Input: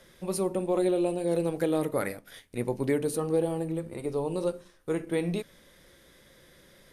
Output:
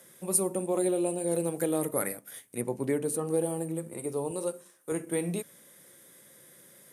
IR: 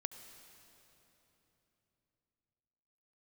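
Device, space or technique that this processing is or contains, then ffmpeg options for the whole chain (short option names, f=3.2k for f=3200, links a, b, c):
budget condenser microphone: -filter_complex "[0:a]asettb=1/sr,asplit=3[a][b][c];[a]atrim=end=2.614[d];[b]atrim=start=2.61:end=3.27,asetpts=PTS-STARTPTS,afade=t=in:d=0.004:c=qsin,afade=t=out:st=0.656:d=0.004:c=qsin,lowpass=f=4k:p=1[e];[c]atrim=start=3.266[f];[d][e]acrossfade=d=0.004:c1=hsin:c2=qsin[g];[g][f]acrossfade=d=0.004:c1=qsin:c2=hsin,highpass=f=120:w=0.5412,highpass=f=120:w=1.3066,highshelf=f=6.4k:t=q:w=1.5:g=11,asettb=1/sr,asplit=3[h][i][j];[h]atrim=end=4.314[k];[i]atrim=start=4.31:end=4.92,asetpts=PTS-STARTPTS,afade=t=in:d=0.004:c=qsin,afade=t=out:st=0.606:d=0.004:c=qsin,highpass=f=280:p=1[l];[j]atrim=start=4.916[m];[k][l]acrossfade=d=0.004:c1=hsin:c2=qsin[n];[n][m]acrossfade=d=0.004:c1=qsin:c2=hsin,volume=-2dB"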